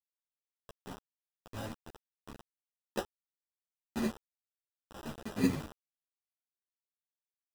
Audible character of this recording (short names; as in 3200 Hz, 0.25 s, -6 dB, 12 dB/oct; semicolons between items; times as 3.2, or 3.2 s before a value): aliases and images of a low sample rate 2200 Hz, jitter 0%; random-step tremolo 3.5 Hz, depth 90%; a quantiser's noise floor 6-bit, dither none; a shimmering, thickened sound